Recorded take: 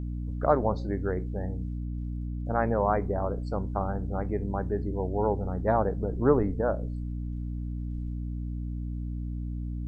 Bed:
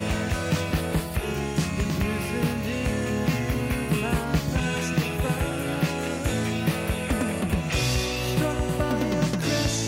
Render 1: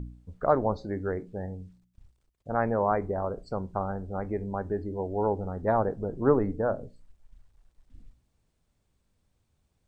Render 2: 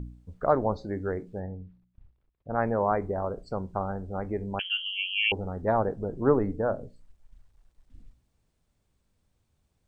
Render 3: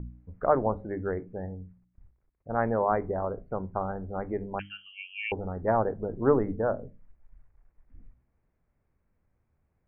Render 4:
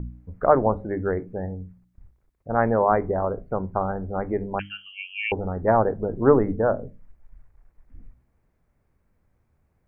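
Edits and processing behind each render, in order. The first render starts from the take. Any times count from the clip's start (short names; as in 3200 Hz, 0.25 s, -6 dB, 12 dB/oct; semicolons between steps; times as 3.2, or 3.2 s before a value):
de-hum 60 Hz, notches 5
1.4–2.58 air absorption 350 m; 4.59–5.32 inverted band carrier 3200 Hz
steep low-pass 2300 Hz 48 dB/oct; notches 50/100/150/200/250/300 Hz
gain +6 dB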